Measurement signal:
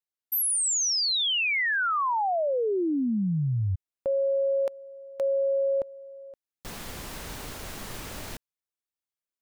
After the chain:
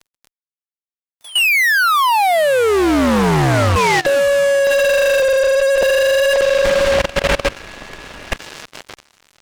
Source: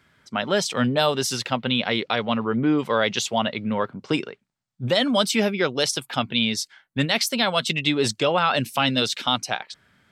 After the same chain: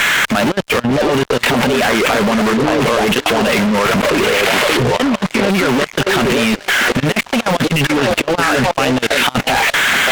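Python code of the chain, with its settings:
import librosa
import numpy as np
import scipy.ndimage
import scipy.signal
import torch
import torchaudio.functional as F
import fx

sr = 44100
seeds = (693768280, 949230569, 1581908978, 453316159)

p1 = x + 0.5 * 10.0 ** (-18.0 / 20.0) * np.diff(np.sign(x), prepend=np.sign(x[:1]))
p2 = fx.over_compress(p1, sr, threshold_db=-28.0, ratio=-0.5)
p3 = fx.wow_flutter(p2, sr, seeds[0], rate_hz=0.58, depth_cents=47.0)
p4 = scipy.signal.sosfilt(scipy.signal.butter(4, 2700.0, 'lowpass', fs=sr, output='sos'), p3)
p5 = fx.peak_eq(p4, sr, hz=110.0, db=-8.0, octaves=0.28)
p6 = p5 + fx.echo_stepped(p5, sr, ms=580, hz=480.0, octaves=0.7, feedback_pct=70, wet_db=-1.5, dry=0)
p7 = fx.fuzz(p6, sr, gain_db=38.0, gate_db=-43.0)
p8 = fx.level_steps(p7, sr, step_db=21)
y = p8 * 10.0 ** (7.5 / 20.0)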